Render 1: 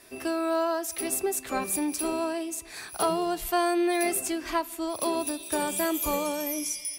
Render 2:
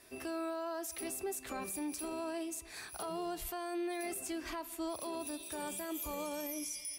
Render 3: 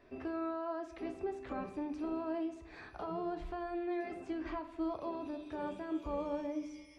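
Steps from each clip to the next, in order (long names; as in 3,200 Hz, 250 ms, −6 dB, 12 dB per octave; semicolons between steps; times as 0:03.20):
parametric band 63 Hz +6.5 dB 0.77 octaves; brickwall limiter −25 dBFS, peak gain reduction 11 dB; level −6.5 dB
head-to-tape spacing loss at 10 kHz 41 dB; rectangular room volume 93 cubic metres, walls mixed, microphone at 0.34 metres; level +3.5 dB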